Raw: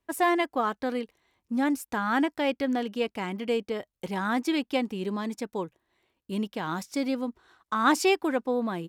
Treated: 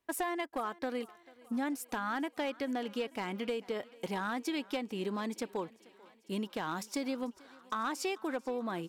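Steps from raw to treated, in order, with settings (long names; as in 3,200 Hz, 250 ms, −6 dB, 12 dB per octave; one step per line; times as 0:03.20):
low-shelf EQ 140 Hz −11.5 dB
downward compressor 12 to 1, threshold −31 dBFS, peak gain reduction 14.5 dB
gain into a clipping stage and back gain 27 dB
on a send: feedback echo with a high-pass in the loop 441 ms, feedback 68%, high-pass 270 Hz, level −21.5 dB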